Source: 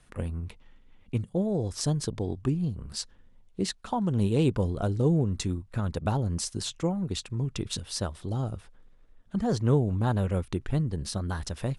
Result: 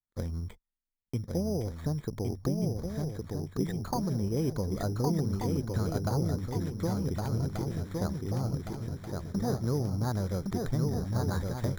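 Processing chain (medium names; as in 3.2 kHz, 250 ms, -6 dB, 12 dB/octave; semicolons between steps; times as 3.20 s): gate -43 dBFS, range -39 dB; steep low-pass 2.4 kHz 96 dB/octave; compression 2:1, threshold -31 dBFS, peak gain reduction 7.5 dB; on a send: shuffle delay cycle 1484 ms, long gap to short 3:1, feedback 42%, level -3.5 dB; on the sum: careless resampling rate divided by 8×, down filtered, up hold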